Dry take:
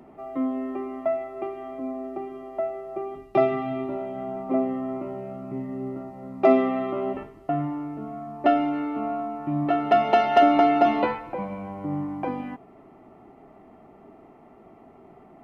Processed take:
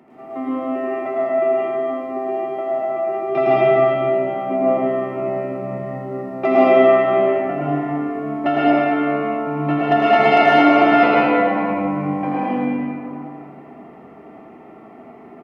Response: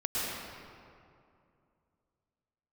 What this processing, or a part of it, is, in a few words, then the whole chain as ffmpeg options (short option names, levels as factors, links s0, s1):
PA in a hall: -filter_complex "[0:a]highpass=120,equalizer=f=2100:t=o:w=1.2:g=6,aecho=1:1:82:0.501[s0];[1:a]atrim=start_sample=2205[s1];[s0][s1]afir=irnorm=-1:irlink=0,volume=0.891"